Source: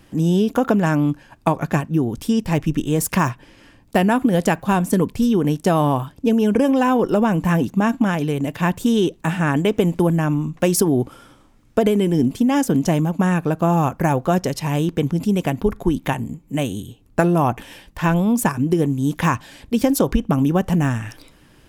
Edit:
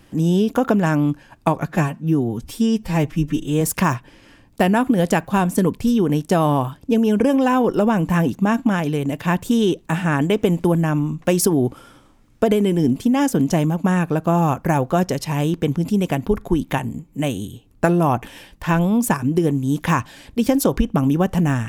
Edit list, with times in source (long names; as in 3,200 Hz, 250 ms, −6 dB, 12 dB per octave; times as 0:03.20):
0:01.66–0:02.96: time-stretch 1.5×